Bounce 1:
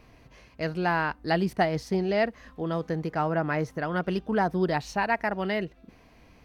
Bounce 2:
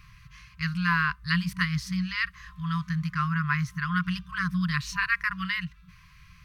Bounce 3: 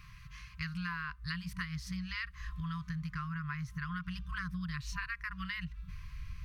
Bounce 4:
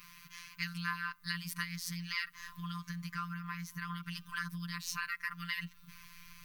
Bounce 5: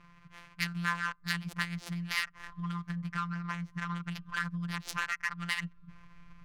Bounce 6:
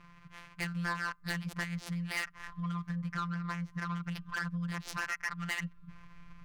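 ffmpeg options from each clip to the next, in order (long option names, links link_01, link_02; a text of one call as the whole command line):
ffmpeg -i in.wav -af "afftfilt=real='re*(1-between(b*sr/4096,190,1000))':imag='im*(1-between(b*sr/4096,190,1000))':win_size=4096:overlap=0.75,volume=4.5dB" out.wav
ffmpeg -i in.wav -af "asubboost=boost=7:cutoff=95,acompressor=threshold=-34dB:ratio=10,volume=-1.5dB" out.wav
ffmpeg -i in.wav -af "aemphasis=mode=production:type=bsi,afftfilt=real='hypot(re,im)*cos(PI*b)':imag='0':win_size=1024:overlap=0.75,volume=4dB" out.wav
ffmpeg -i in.wav -af "adynamicsmooth=sensitivity=7:basefreq=870,volume=5.5dB" out.wav
ffmpeg -i in.wav -af "asoftclip=type=tanh:threshold=-28.5dB,volume=1.5dB" out.wav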